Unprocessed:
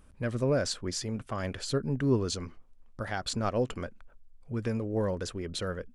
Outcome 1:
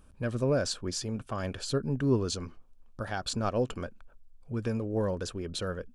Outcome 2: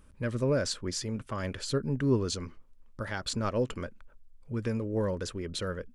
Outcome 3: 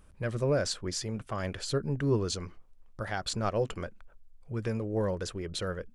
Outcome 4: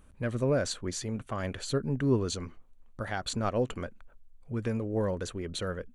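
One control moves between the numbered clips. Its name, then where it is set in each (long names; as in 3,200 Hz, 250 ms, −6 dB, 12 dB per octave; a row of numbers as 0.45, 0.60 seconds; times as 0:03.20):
notch filter, centre frequency: 2,000, 730, 250, 5,100 Hertz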